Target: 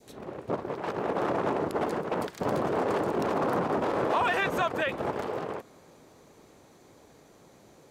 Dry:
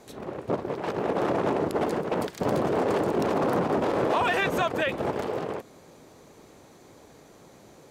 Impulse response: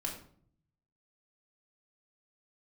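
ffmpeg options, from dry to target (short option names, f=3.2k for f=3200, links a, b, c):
-af "adynamicequalizer=threshold=0.0141:dfrequency=1200:dqfactor=0.93:tfrequency=1200:tqfactor=0.93:attack=5:release=100:ratio=0.375:range=2:mode=boostabove:tftype=bell,volume=-4dB"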